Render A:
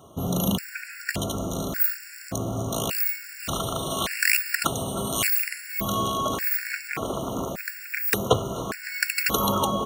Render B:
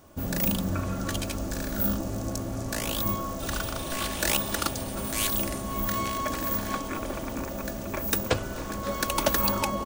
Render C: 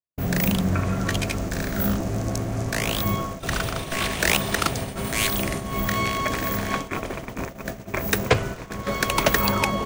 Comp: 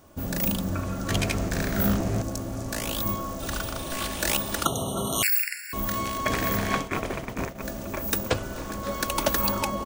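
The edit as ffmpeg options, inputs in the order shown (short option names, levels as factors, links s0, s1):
-filter_complex "[2:a]asplit=2[s0][s1];[1:a]asplit=4[s2][s3][s4][s5];[s2]atrim=end=1.102[s6];[s0]atrim=start=1.098:end=2.222[s7];[s3]atrim=start=2.218:end=4.652[s8];[0:a]atrim=start=4.648:end=5.732[s9];[s4]atrim=start=5.728:end=6.262[s10];[s1]atrim=start=6.258:end=7.622[s11];[s5]atrim=start=7.618[s12];[s6][s7]acrossfade=d=0.004:c1=hsin:c2=hsin[s13];[s13][s8]acrossfade=d=0.004:c1=hsin:c2=hsin[s14];[s14][s9]acrossfade=d=0.004:c1=hsin:c2=hsin[s15];[s15][s10]acrossfade=d=0.004:c1=hsin:c2=hsin[s16];[s16][s11]acrossfade=d=0.004:c1=hsin:c2=hsin[s17];[s17][s12]acrossfade=d=0.004:c1=hsin:c2=hsin"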